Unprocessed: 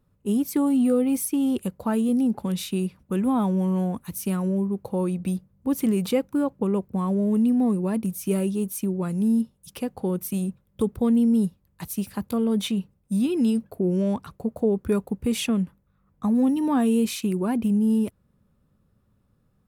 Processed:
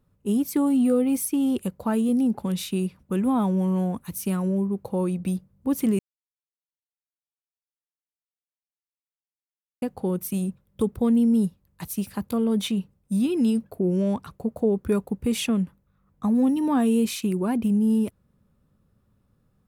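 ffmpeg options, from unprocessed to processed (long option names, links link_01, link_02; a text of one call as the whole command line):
ffmpeg -i in.wav -filter_complex "[0:a]asplit=3[link_01][link_02][link_03];[link_01]atrim=end=5.99,asetpts=PTS-STARTPTS,afade=type=out:start_time=5.986:duration=0.004:curve=hsin[link_04];[link_02]atrim=start=5.99:end=9.82,asetpts=PTS-STARTPTS,volume=0[link_05];[link_03]atrim=start=9.82,asetpts=PTS-STARTPTS,afade=type=in:duration=0.004:curve=hsin[link_06];[link_04][link_05][link_06]concat=n=3:v=0:a=1" out.wav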